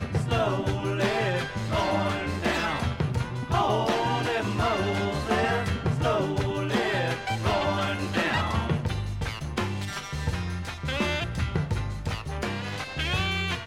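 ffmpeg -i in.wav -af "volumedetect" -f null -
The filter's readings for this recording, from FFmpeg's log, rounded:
mean_volume: -27.1 dB
max_volume: -11.8 dB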